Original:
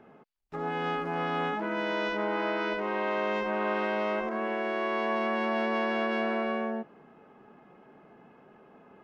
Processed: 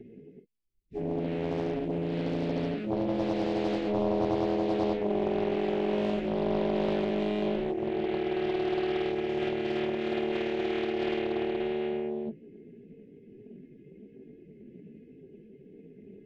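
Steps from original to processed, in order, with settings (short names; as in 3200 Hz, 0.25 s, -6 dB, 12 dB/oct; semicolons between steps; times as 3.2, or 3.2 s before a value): elliptic band-stop 440–2100 Hz, stop band 40 dB; plain phase-vocoder stretch 1.8×; tilt shelf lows +8 dB, about 940 Hz; Doppler distortion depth 0.77 ms; gain +4.5 dB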